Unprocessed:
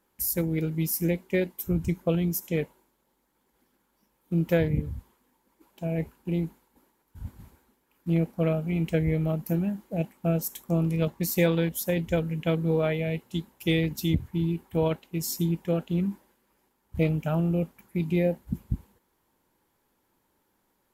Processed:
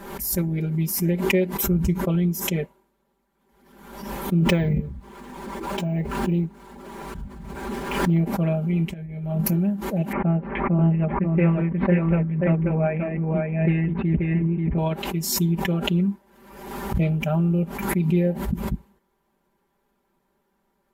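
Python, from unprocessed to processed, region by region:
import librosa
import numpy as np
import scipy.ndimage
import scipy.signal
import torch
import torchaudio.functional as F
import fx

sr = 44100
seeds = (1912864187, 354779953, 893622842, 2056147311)

y = fx.chain(x, sr, fx.resample_bad(factor=2, down='filtered', up='hold'),
    fx.pre_swell(db_per_s=25.0), at=(4.42, 8.21))
y = fx.chain(y, sr, fx.doubler(ms=24.0, db=-5.5),
    fx.over_compress(threshold_db=-31.0, ratio=-0.5), at=(8.93, 9.51))
y = fx.chain(y, sr, fx.steep_lowpass(hz=2400.0, slope=48),
    fx.echo_single(ms=534, db=-3.0),
    fx.doppler_dist(depth_ms=0.28), at=(10.12, 14.78))
y = fx.high_shelf(y, sr, hz=3300.0, db=-10.0)
y = y + 0.95 * np.pad(y, (int(5.1 * sr / 1000.0), 0))[:len(y)]
y = fx.pre_swell(y, sr, db_per_s=54.0)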